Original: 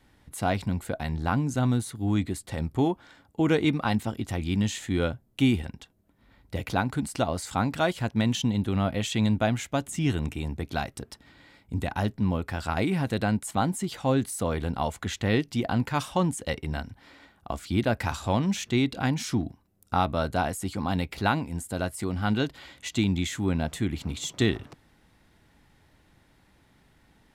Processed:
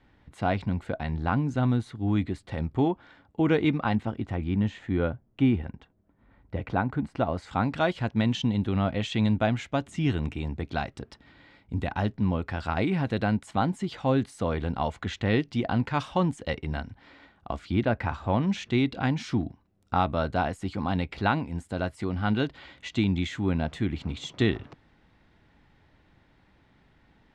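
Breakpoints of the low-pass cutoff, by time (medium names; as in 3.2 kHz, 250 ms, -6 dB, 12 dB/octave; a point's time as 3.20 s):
3.66 s 3.2 kHz
4.48 s 1.8 kHz
7.14 s 1.8 kHz
7.75 s 3.9 kHz
17.53 s 3.9 kHz
18.24 s 1.8 kHz
18.53 s 3.7 kHz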